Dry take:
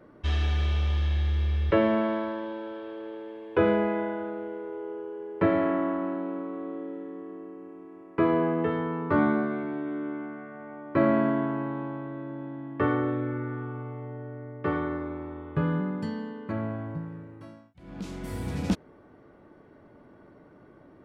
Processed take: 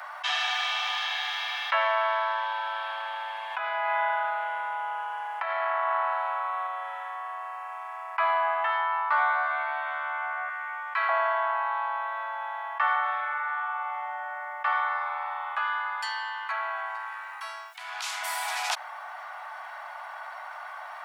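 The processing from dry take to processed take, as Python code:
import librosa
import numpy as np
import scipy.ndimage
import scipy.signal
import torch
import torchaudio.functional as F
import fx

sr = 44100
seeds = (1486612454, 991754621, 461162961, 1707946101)

y = fx.over_compress(x, sr, threshold_db=-29.0, ratio=-1.0, at=(3.5, 6.67))
y = fx.highpass(y, sr, hz=1400.0, slope=12, at=(10.49, 11.09))
y = fx.highpass(y, sr, hz=1000.0, slope=12, at=(15.58, 18.22))
y = scipy.signal.sosfilt(scipy.signal.butter(12, 710.0, 'highpass', fs=sr, output='sos'), y)
y = fx.env_flatten(y, sr, amount_pct=50)
y = y * 10.0 ** (5.5 / 20.0)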